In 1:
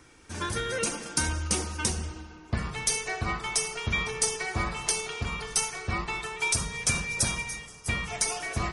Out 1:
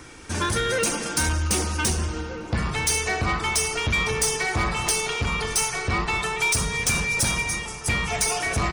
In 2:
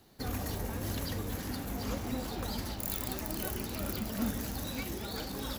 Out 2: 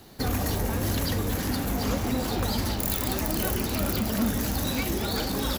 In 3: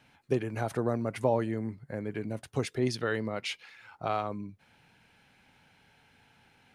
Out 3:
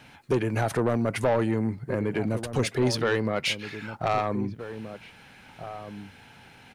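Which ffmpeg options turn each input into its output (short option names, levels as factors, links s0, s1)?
-filter_complex "[0:a]asplit=2[s0][s1];[s1]acompressor=threshold=0.0158:ratio=6,volume=0.794[s2];[s0][s2]amix=inputs=2:normalize=0,asoftclip=type=tanh:threshold=0.0668,asplit=2[s3][s4];[s4]adelay=1574,volume=0.282,highshelf=f=4000:g=-35.4[s5];[s3][s5]amix=inputs=2:normalize=0,volume=2.11"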